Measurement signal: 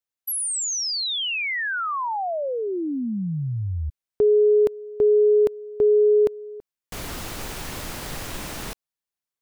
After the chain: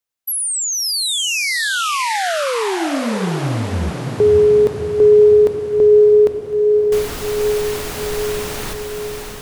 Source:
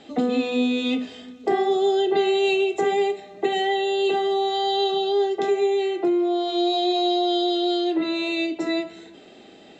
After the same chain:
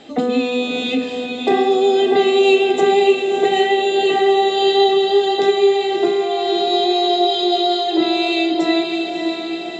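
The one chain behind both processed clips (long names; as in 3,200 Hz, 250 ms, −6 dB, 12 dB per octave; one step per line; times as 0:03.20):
mains-hum notches 50/100/150/200/250/300/350 Hz
feedback delay with all-pass diffusion 608 ms, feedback 59%, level −5 dB
level +5.5 dB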